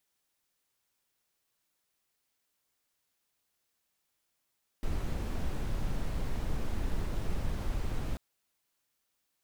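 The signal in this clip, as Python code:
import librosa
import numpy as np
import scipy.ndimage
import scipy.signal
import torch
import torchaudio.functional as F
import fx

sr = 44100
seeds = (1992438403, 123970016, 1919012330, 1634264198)

y = fx.noise_colour(sr, seeds[0], length_s=3.34, colour='brown', level_db=-31.0)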